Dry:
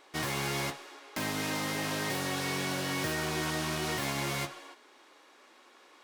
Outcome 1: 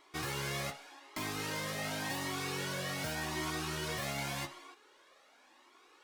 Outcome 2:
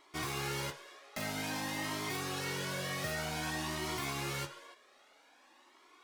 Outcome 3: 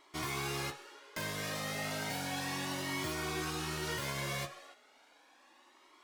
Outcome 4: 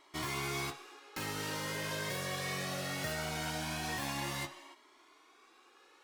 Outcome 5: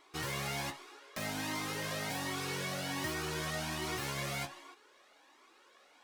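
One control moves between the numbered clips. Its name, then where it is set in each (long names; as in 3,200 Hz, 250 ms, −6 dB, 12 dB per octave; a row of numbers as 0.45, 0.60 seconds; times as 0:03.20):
flanger whose copies keep moving one way, speed: 0.88, 0.52, 0.34, 0.21, 1.3 Hertz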